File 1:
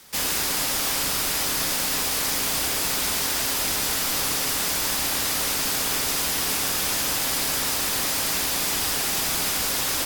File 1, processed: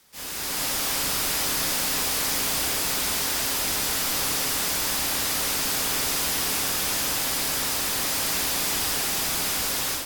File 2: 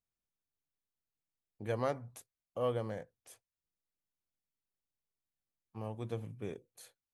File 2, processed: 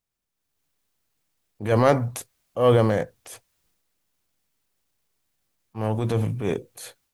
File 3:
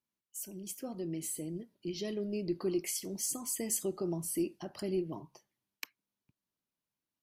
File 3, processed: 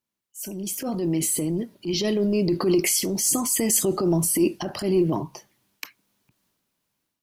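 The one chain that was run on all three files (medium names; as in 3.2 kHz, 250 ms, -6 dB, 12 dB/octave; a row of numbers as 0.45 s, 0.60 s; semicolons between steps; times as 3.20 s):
transient shaper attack -8 dB, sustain +5 dB; level rider gain up to 10 dB; short-mantissa float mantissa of 6-bit; normalise loudness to -23 LUFS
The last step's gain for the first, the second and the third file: -9.5 dB, +7.5 dB, +4.5 dB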